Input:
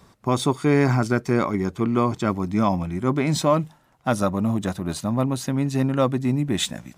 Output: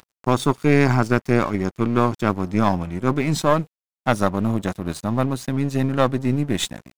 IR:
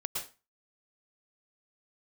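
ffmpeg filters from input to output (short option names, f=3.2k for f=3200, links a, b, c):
-af "acompressor=mode=upward:threshold=-37dB:ratio=2.5,aeval=exprs='0.473*(cos(1*acos(clip(val(0)/0.473,-1,1)))-cos(1*PI/2))+0.188*(cos(2*acos(clip(val(0)/0.473,-1,1)))-cos(2*PI/2))':c=same,aeval=exprs='sgn(val(0))*max(abs(val(0))-0.0119,0)':c=same,volume=1dB"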